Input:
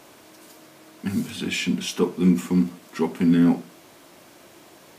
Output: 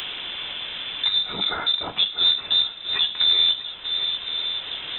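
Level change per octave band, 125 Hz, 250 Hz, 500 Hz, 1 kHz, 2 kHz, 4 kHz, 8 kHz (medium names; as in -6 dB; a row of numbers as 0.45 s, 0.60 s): under -20 dB, -24.5 dB, -11.5 dB, +2.5 dB, +2.0 dB, +19.0 dB, under -25 dB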